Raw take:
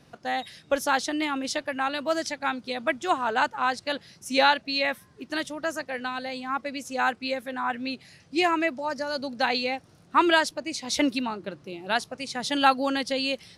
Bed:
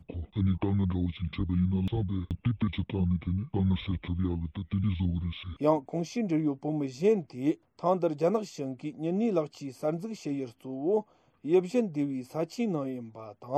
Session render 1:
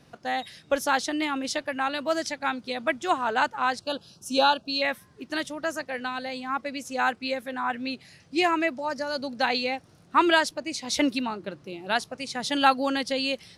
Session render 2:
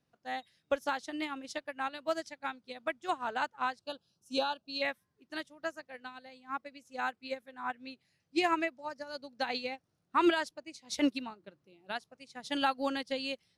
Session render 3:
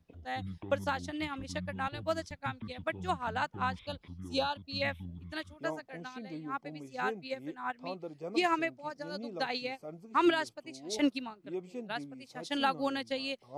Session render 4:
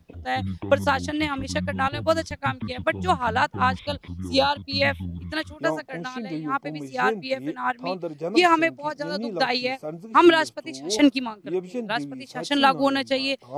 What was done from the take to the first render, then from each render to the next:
3.81–4.82 Butterworth band-stop 2000 Hz, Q 1.6
limiter -15.5 dBFS, peak gain reduction 8 dB; upward expander 2.5:1, over -36 dBFS
add bed -15 dB
gain +11.5 dB

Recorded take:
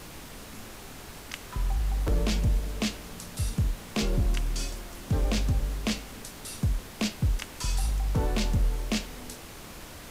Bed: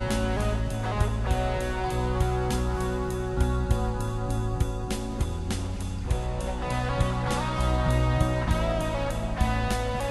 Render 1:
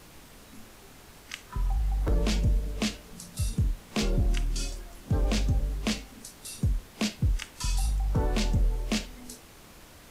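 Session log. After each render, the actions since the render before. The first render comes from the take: noise print and reduce 7 dB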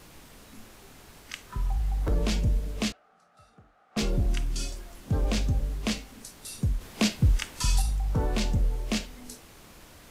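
2.92–3.97 double band-pass 980 Hz, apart 0.72 oct; 6.81–7.82 gain +4.5 dB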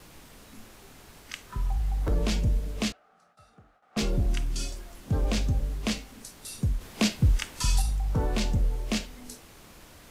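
gate with hold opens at -53 dBFS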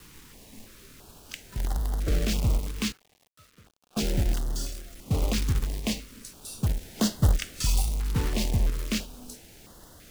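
companded quantiser 4-bit; stepped notch 3 Hz 650–2400 Hz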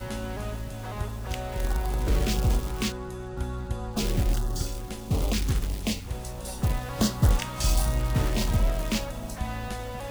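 add bed -7 dB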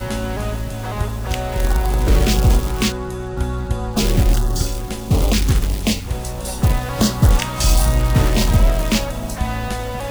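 gain +10 dB; limiter -3 dBFS, peak gain reduction 3 dB

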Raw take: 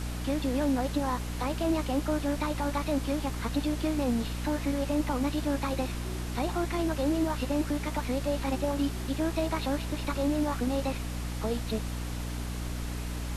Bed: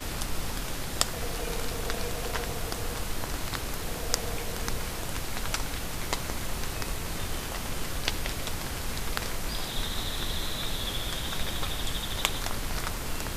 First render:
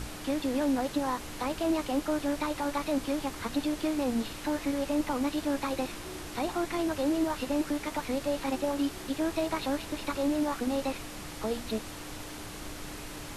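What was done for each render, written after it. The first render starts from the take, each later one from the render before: notches 60/120/180/240 Hz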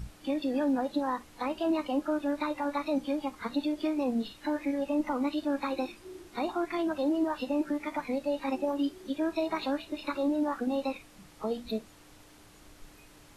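noise print and reduce 14 dB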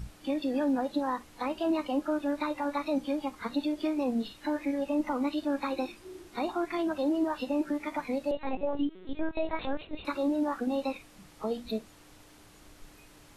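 8.31–10.05 LPC vocoder at 8 kHz pitch kept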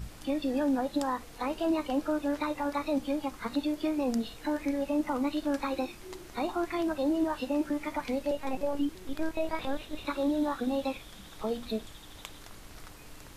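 add bed -17.5 dB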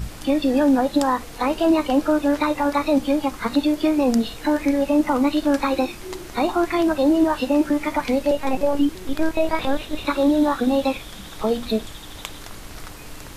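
gain +11 dB

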